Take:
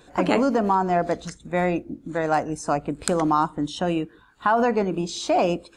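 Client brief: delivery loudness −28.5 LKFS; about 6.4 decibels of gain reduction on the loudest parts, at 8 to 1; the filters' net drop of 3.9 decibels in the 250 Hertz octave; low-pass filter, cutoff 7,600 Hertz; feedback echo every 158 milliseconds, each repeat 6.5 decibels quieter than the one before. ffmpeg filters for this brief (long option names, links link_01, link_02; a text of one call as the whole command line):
ffmpeg -i in.wav -af "lowpass=7600,equalizer=frequency=250:width_type=o:gain=-5.5,acompressor=threshold=-23dB:ratio=8,aecho=1:1:158|316|474|632|790|948:0.473|0.222|0.105|0.0491|0.0231|0.0109" out.wav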